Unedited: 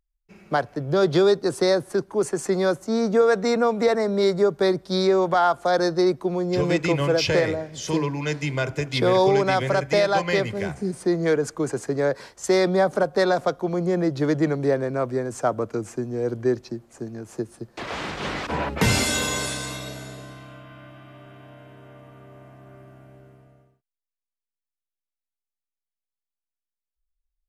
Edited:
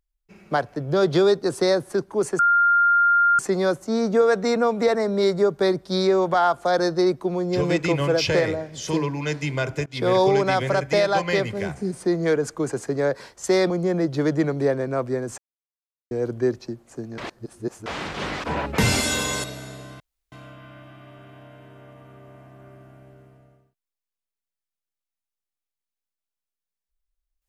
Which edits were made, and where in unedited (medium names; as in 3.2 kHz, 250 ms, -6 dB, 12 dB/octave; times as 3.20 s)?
2.39 s: add tone 1.4 kHz -14 dBFS 1.00 s
8.86–9.12 s: fade in, from -21.5 dB
12.70–13.73 s: delete
15.41–16.14 s: mute
17.21–17.89 s: reverse
19.47–19.83 s: delete
20.39 s: insert room tone 0.32 s